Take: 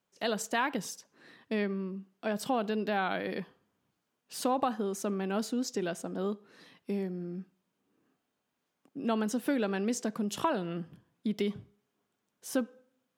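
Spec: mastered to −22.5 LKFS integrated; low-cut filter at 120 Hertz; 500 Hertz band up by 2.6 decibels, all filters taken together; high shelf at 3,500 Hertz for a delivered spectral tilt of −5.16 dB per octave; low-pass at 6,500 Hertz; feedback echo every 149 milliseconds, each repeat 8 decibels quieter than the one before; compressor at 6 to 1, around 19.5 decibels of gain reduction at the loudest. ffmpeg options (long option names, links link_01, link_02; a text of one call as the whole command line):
ffmpeg -i in.wav -af "highpass=120,lowpass=6500,equalizer=frequency=500:width_type=o:gain=3.5,highshelf=frequency=3500:gain=-6.5,acompressor=threshold=-45dB:ratio=6,aecho=1:1:149|298|447|596|745:0.398|0.159|0.0637|0.0255|0.0102,volume=26dB" out.wav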